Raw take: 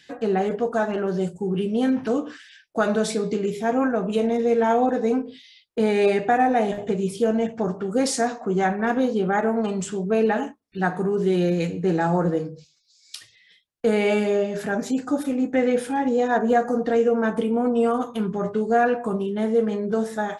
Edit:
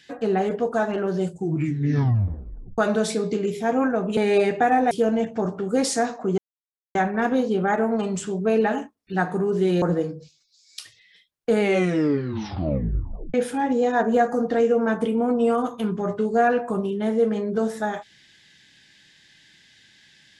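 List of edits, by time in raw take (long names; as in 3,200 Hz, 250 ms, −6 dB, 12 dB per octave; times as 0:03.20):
0:01.33: tape stop 1.45 s
0:04.17–0:05.85: remove
0:06.59–0:07.13: remove
0:08.60: splice in silence 0.57 s
0:11.47–0:12.18: remove
0:13.97: tape stop 1.73 s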